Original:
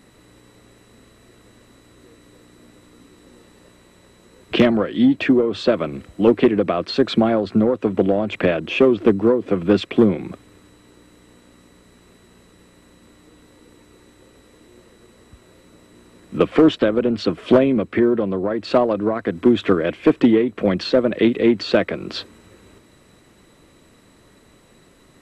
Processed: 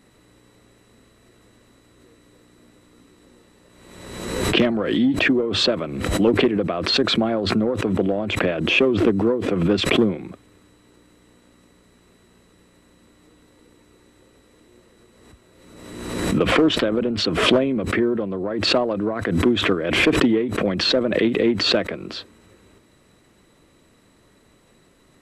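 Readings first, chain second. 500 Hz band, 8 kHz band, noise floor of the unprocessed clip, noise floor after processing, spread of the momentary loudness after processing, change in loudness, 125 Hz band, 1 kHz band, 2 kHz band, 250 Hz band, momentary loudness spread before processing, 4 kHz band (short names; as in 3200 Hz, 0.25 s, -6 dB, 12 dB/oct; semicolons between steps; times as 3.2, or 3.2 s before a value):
-3.5 dB, n/a, -52 dBFS, -56 dBFS, 8 LU, -1.5 dB, +1.0 dB, -1.0 dB, +4.5 dB, -3.0 dB, 7 LU, +7.5 dB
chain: backwards sustainer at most 43 dB/s; gain -4.5 dB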